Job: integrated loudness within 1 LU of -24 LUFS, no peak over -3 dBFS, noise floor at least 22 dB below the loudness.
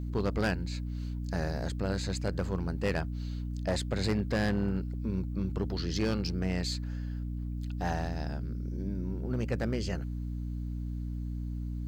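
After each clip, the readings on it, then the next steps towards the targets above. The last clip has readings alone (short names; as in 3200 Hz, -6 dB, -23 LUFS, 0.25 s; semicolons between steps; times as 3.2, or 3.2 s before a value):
clipped 1.1%; flat tops at -23.0 dBFS; hum 60 Hz; harmonics up to 300 Hz; hum level -33 dBFS; loudness -33.5 LUFS; peak -23.0 dBFS; loudness target -24.0 LUFS
-> clip repair -23 dBFS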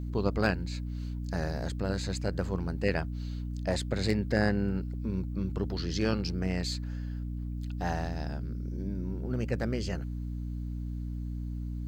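clipped 0.0%; hum 60 Hz; harmonics up to 300 Hz; hum level -33 dBFS
-> notches 60/120/180/240/300 Hz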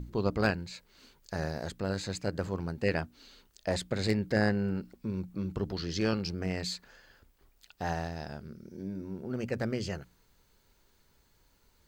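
hum none; loudness -34.0 LUFS; peak -13.5 dBFS; loudness target -24.0 LUFS
-> gain +10 dB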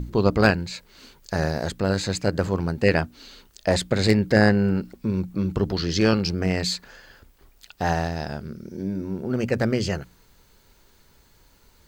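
loudness -24.0 LUFS; peak -3.5 dBFS; noise floor -58 dBFS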